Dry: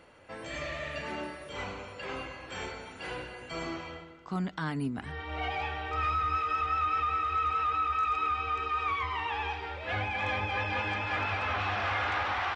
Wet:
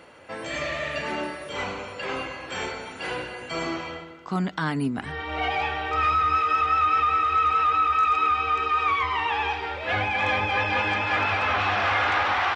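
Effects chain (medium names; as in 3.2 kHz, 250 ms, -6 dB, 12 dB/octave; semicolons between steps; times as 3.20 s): high-pass 140 Hz 6 dB/octave; trim +8 dB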